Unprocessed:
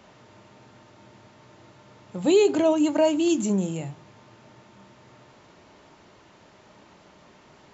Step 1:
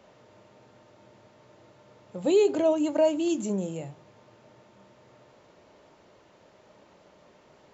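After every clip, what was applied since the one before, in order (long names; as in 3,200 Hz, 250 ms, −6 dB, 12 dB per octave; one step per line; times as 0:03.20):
parametric band 530 Hz +8 dB 0.73 octaves
level −6.5 dB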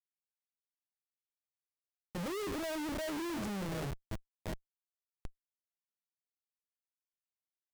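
feedback echo with a band-pass in the loop 733 ms, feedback 68%, band-pass 730 Hz, level −17.5 dB
comparator with hysteresis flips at −36.5 dBFS
level −6.5 dB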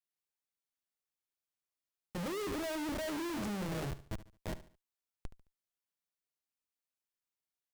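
repeating echo 72 ms, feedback 35%, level −15 dB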